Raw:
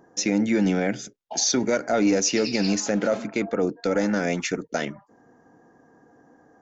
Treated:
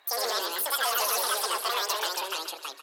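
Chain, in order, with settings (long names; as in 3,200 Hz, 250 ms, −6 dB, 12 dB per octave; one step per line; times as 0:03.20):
high-pass filter 900 Hz 6 dB per octave
high-shelf EQ 2,700 Hz +10.5 dB
brickwall limiter −13.5 dBFS, peak gain reduction 9.5 dB
log-companded quantiser 6 bits
high-frequency loss of the air 110 metres
repeating echo 273 ms, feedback 43%, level −11.5 dB
delay with pitch and tempo change per echo 108 ms, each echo −2 semitones, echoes 2
wrong playback speed 33 rpm record played at 78 rpm
saturating transformer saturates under 2,400 Hz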